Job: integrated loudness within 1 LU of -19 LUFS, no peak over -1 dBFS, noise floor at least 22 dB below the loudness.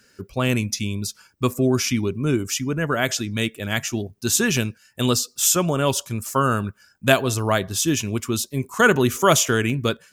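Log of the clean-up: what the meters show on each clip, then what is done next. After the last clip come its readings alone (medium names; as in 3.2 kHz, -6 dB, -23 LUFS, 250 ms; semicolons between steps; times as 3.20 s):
dropouts 3; longest dropout 1.4 ms; loudness -21.5 LUFS; peak level -1.5 dBFS; loudness target -19.0 LUFS
-> interpolate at 4.57/8.74/9.70 s, 1.4 ms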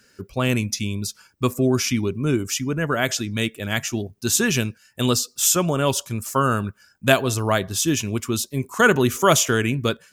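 dropouts 0; loudness -21.5 LUFS; peak level -1.5 dBFS; loudness target -19.0 LUFS
-> trim +2.5 dB; peak limiter -1 dBFS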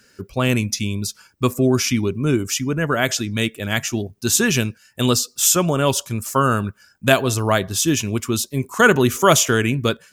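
loudness -19.0 LUFS; peak level -1.0 dBFS; noise floor -56 dBFS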